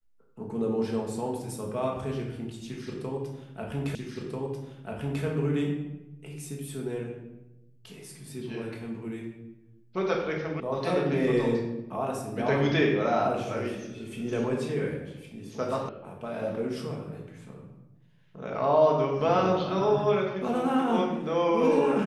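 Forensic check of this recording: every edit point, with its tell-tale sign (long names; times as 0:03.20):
0:03.95: the same again, the last 1.29 s
0:10.60: cut off before it has died away
0:15.89: cut off before it has died away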